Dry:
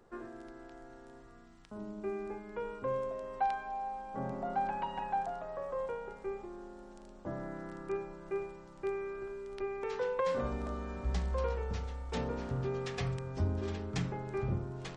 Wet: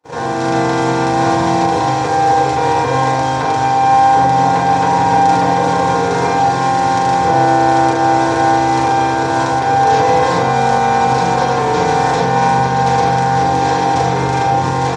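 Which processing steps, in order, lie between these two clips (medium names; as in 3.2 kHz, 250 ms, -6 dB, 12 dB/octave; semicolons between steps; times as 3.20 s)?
spectral levelling over time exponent 0.2; level rider gain up to 10 dB; early reflections 39 ms -3.5 dB, 76 ms -11 dB; peak limiter -12 dBFS, peak gain reduction 9.5 dB; high-pass 110 Hz 24 dB/octave; treble shelf 3.5 kHz +9.5 dB; hum notches 50/100/150/200/250/300/350/400 Hz; feedback comb 630 Hz, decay 0.31 s, mix 40%; FDN reverb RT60 0.53 s, low-frequency decay 0.8×, high-frequency decay 0.25×, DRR -9 dB; gate -23 dBFS, range -47 dB; trim +1 dB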